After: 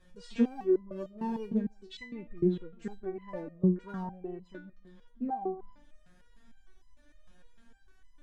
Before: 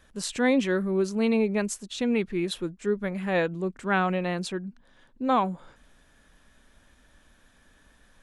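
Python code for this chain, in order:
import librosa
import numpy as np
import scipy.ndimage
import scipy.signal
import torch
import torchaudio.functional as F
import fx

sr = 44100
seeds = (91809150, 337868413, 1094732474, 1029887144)

y = fx.graphic_eq(x, sr, hz=(125, 250, 1000, 2000), db=(7, -5, -5, 10), at=(1.88, 2.29))
y = fx.env_lowpass_down(y, sr, base_hz=560.0, full_db=-23.0)
y = scipy.signal.sosfilt(scipy.signal.butter(2, 9000.0, 'lowpass', fs=sr, output='sos'), y)
y = fx.low_shelf(y, sr, hz=360.0, db=9.5)
y = np.clip(y, -10.0 ** (-15.0 / 20.0), 10.0 ** (-15.0 / 20.0))
y = fx.echo_filtered(y, sr, ms=151, feedback_pct=30, hz=1200.0, wet_db=-19)
y = fx.resonator_held(y, sr, hz=6.6, low_hz=180.0, high_hz=1000.0)
y = y * librosa.db_to_amplitude(6.0)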